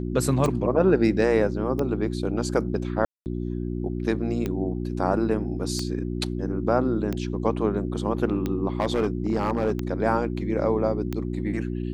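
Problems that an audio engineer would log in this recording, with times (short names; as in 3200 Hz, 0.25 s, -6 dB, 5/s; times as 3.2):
hum 60 Hz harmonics 6 -29 dBFS
tick 45 rpm -15 dBFS
3.05–3.26 gap 0.209 s
8.8–9.72 clipped -17.5 dBFS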